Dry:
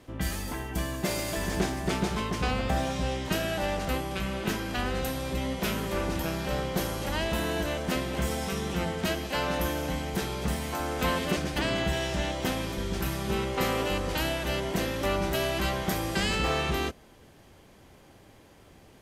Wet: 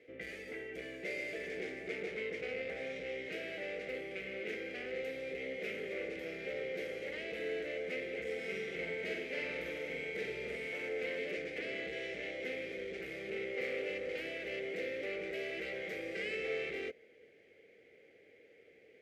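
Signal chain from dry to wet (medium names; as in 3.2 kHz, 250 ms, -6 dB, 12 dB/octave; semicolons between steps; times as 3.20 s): overload inside the chain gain 29 dB; two resonant band-passes 1 kHz, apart 2.2 oct; 8.34–10.89 s: flutter echo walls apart 8 m, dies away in 0.7 s; trim +4 dB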